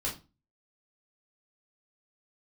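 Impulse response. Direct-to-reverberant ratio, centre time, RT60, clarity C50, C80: -5.5 dB, 23 ms, 0.30 s, 10.0 dB, 17.0 dB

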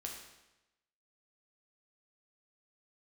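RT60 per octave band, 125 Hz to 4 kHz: 1.0 s, 0.95 s, 1.0 s, 0.95 s, 0.95 s, 0.90 s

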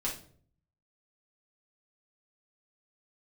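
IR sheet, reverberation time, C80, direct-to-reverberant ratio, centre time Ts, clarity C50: no single decay rate, 14.0 dB, -5.5 dB, 22 ms, 8.0 dB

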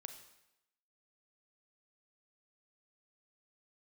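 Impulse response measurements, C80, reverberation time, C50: 11.0 dB, 0.90 s, 8.5 dB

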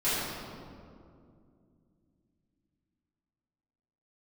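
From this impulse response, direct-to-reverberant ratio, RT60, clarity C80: -14.5 dB, 2.4 s, -1.5 dB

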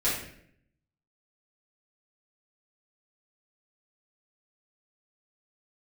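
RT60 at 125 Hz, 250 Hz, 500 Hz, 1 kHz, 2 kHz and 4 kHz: 1.0 s, 0.85 s, 0.75 s, 0.55 s, 0.65 s, 0.50 s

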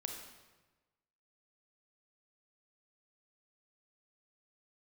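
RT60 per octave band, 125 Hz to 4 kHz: 1.4 s, 1.2 s, 1.2 s, 1.2 s, 1.1 s, 0.95 s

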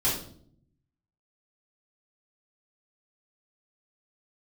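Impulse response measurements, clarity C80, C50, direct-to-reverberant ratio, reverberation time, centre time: 9.0 dB, 4.5 dB, -9.5 dB, 0.60 s, 38 ms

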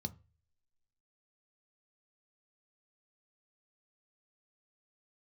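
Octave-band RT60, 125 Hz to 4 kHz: 0.55 s, 0.30 s, 0.35 s, 0.30 s, 0.50 s, 0.30 s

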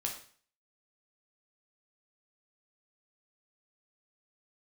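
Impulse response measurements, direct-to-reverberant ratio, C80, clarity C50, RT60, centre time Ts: 0.0 dB, 11.5 dB, 7.5 dB, 0.45 s, 22 ms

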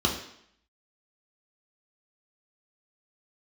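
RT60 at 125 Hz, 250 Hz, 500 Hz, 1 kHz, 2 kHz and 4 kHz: 0.55 s, 0.70 s, 0.70 s, 0.70 s, 0.70 s, 0.70 s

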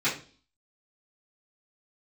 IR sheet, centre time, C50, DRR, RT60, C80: 25 ms, 9.0 dB, -14.0 dB, 0.40 s, 14.5 dB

